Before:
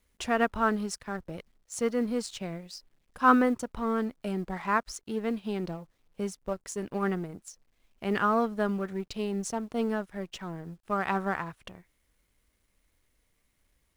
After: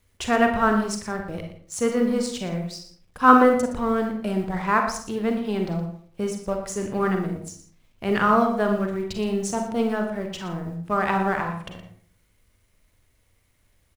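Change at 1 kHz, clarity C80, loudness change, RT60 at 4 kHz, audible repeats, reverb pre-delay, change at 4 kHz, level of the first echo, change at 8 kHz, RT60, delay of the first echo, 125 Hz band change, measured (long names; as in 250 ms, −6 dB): +7.5 dB, 8.5 dB, +7.0 dB, 0.35 s, 1, 36 ms, +6.5 dB, −12.5 dB, +6.0 dB, 0.50 s, 118 ms, +8.0 dB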